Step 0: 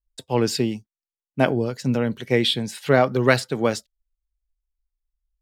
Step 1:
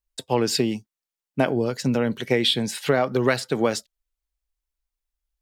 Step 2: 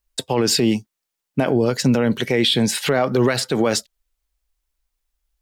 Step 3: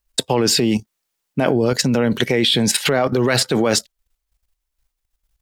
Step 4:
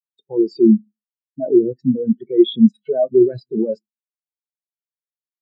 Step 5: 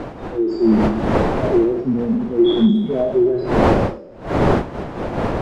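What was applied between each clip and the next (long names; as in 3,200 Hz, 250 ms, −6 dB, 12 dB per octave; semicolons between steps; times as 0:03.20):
downward compressor, threshold −20 dBFS, peak gain reduction 9.5 dB; low-shelf EQ 94 Hz −11 dB; level +4.5 dB
brickwall limiter −17 dBFS, peak gain reduction 10 dB; level +8.5 dB
output level in coarse steps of 12 dB; level +7.5 dB
on a send at −8 dB: convolution reverb RT60 0.65 s, pre-delay 3 ms; on the sum: every bin expanded away from the loudest bin 4 to 1
peak hold with a decay on every bin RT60 1.19 s; wind on the microphone 590 Hz −17 dBFS; level −4.5 dB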